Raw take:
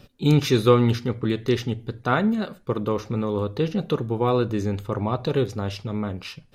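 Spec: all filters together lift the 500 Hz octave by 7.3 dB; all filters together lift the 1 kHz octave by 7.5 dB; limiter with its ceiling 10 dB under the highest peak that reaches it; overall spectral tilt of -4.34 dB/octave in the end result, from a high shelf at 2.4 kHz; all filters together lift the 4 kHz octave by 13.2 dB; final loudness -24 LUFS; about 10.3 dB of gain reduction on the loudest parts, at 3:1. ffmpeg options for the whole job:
-af "equalizer=f=500:t=o:g=7,equalizer=f=1000:t=o:g=5.5,highshelf=f=2400:g=8,equalizer=f=4000:t=o:g=8.5,acompressor=threshold=0.126:ratio=3,volume=1.33,alimiter=limit=0.224:level=0:latency=1"

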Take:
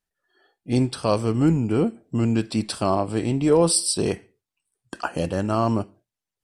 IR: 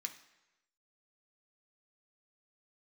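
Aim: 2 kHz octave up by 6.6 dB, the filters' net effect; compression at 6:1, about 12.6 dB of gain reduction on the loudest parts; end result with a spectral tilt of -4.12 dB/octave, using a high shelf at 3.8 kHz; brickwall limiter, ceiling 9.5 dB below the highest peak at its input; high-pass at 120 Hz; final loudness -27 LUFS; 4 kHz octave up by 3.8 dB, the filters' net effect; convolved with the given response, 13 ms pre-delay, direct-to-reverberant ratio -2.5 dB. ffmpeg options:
-filter_complex "[0:a]highpass=120,equalizer=f=2000:t=o:g=9,highshelf=f=3800:g=-6.5,equalizer=f=4000:t=o:g=7.5,acompressor=threshold=0.0501:ratio=6,alimiter=limit=0.0794:level=0:latency=1,asplit=2[s0][s1];[1:a]atrim=start_sample=2205,adelay=13[s2];[s1][s2]afir=irnorm=-1:irlink=0,volume=1.78[s3];[s0][s3]amix=inputs=2:normalize=0,volume=1.41"

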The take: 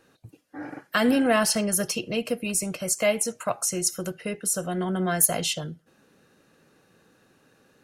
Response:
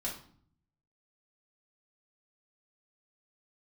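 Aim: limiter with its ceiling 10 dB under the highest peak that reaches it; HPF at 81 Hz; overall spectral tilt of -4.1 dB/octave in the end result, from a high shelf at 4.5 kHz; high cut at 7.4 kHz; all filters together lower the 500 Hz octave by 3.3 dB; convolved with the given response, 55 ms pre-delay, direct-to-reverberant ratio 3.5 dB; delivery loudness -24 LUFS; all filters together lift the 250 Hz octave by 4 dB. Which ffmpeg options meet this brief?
-filter_complex "[0:a]highpass=81,lowpass=7400,equalizer=f=250:t=o:g=6,equalizer=f=500:t=o:g=-6,highshelf=f=4500:g=6,alimiter=limit=0.119:level=0:latency=1,asplit=2[s0][s1];[1:a]atrim=start_sample=2205,adelay=55[s2];[s1][s2]afir=irnorm=-1:irlink=0,volume=0.531[s3];[s0][s3]amix=inputs=2:normalize=0,volume=1.26"

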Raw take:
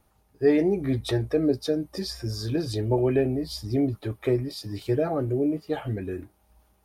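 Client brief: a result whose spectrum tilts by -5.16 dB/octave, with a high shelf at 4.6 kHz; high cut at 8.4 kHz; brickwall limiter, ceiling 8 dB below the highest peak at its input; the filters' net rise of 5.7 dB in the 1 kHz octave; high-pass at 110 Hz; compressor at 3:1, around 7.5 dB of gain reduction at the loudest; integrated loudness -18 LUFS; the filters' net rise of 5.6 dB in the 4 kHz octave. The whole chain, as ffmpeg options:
-af "highpass=110,lowpass=8400,equalizer=f=1000:t=o:g=7.5,equalizer=f=4000:t=o:g=4.5,highshelf=f=4600:g=4,acompressor=threshold=0.0631:ratio=3,volume=4.47,alimiter=limit=0.376:level=0:latency=1"

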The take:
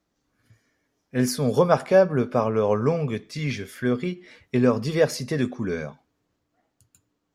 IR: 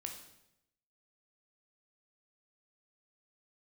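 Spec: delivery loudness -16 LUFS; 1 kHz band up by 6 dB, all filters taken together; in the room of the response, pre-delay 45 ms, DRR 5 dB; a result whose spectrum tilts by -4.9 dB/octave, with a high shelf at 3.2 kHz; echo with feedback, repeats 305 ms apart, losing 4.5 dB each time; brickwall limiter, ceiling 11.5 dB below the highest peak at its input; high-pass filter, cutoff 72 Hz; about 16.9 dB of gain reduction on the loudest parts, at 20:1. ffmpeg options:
-filter_complex "[0:a]highpass=72,equalizer=f=1000:t=o:g=7,highshelf=f=3200:g=6.5,acompressor=threshold=0.0562:ratio=20,alimiter=level_in=1.19:limit=0.0631:level=0:latency=1,volume=0.841,aecho=1:1:305|610|915|1220|1525|1830|2135|2440|2745:0.596|0.357|0.214|0.129|0.0772|0.0463|0.0278|0.0167|0.01,asplit=2[s0][s1];[1:a]atrim=start_sample=2205,adelay=45[s2];[s1][s2]afir=irnorm=-1:irlink=0,volume=0.75[s3];[s0][s3]amix=inputs=2:normalize=0,volume=6.68"

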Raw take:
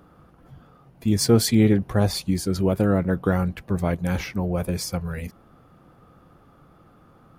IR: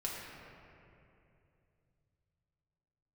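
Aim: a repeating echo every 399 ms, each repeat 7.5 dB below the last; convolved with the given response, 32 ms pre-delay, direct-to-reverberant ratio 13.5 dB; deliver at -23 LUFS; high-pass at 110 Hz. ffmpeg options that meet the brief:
-filter_complex "[0:a]highpass=110,aecho=1:1:399|798|1197|1596|1995:0.422|0.177|0.0744|0.0312|0.0131,asplit=2[s0][s1];[1:a]atrim=start_sample=2205,adelay=32[s2];[s1][s2]afir=irnorm=-1:irlink=0,volume=0.158[s3];[s0][s3]amix=inputs=2:normalize=0,volume=0.944"

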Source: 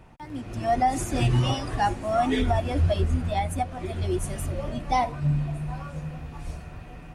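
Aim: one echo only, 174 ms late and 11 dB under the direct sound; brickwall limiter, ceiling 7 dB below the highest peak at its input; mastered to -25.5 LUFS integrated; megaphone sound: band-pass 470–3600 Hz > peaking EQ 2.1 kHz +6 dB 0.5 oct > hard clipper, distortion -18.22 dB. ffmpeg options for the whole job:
-af "alimiter=limit=0.106:level=0:latency=1,highpass=470,lowpass=3600,equalizer=f=2100:t=o:w=0.5:g=6,aecho=1:1:174:0.282,asoftclip=type=hard:threshold=0.0596,volume=2.66"

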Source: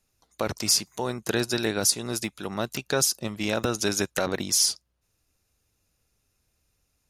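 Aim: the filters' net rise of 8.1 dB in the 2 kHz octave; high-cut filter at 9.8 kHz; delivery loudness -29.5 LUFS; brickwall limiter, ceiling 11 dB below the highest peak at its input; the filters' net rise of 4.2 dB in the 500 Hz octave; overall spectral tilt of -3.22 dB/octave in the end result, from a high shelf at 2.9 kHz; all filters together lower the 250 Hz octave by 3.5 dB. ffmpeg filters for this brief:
-af "lowpass=9800,equalizer=f=250:t=o:g=-8.5,equalizer=f=500:t=o:g=7,equalizer=f=2000:t=o:g=8.5,highshelf=f=2900:g=5.5,volume=0.794,alimiter=limit=0.133:level=0:latency=1"

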